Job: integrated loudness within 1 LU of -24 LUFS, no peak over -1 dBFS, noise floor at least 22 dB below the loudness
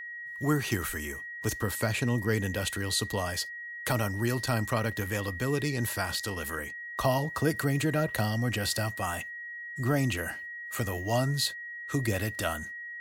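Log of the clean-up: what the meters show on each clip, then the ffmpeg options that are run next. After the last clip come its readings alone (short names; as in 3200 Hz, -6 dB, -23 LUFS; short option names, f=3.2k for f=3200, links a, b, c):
steady tone 1900 Hz; tone level -38 dBFS; loudness -30.5 LUFS; peak -14.5 dBFS; loudness target -24.0 LUFS
-> -af "bandreject=f=1.9k:w=30"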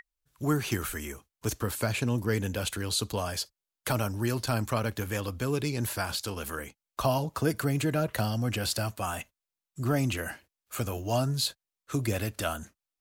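steady tone none; loudness -31.0 LUFS; peak -14.5 dBFS; loudness target -24.0 LUFS
-> -af "volume=7dB"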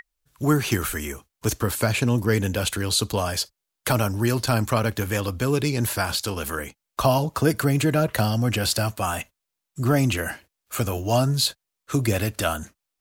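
loudness -24.0 LUFS; peak -7.5 dBFS; noise floor -83 dBFS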